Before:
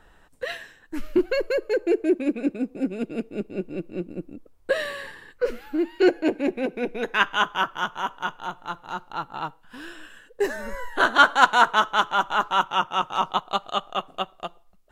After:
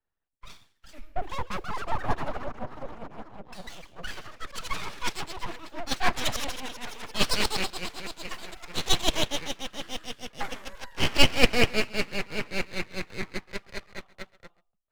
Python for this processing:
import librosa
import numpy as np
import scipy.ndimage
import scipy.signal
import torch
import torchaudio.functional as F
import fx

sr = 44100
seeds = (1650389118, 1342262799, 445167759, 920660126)

p1 = fx.dynamic_eq(x, sr, hz=1700.0, q=2.9, threshold_db=-36.0, ratio=4.0, max_db=5)
p2 = fx.echo_pitch(p1, sr, ms=516, semitones=5, count=3, db_per_echo=-3.0)
p3 = p2 + fx.echo_single(p2, sr, ms=136, db=-19.0, dry=0)
p4 = np.abs(p3)
p5 = fx.band_widen(p4, sr, depth_pct=70)
y = F.gain(torch.from_numpy(p5), -7.0).numpy()